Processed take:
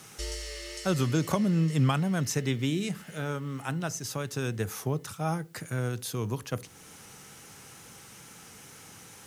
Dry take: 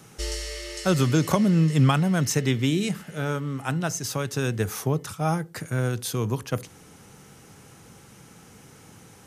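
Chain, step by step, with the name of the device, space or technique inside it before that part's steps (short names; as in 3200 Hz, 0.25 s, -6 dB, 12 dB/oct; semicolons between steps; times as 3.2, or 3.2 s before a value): noise-reduction cassette on a plain deck (mismatched tape noise reduction encoder only; wow and flutter 29 cents; white noise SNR 38 dB); gain -5.5 dB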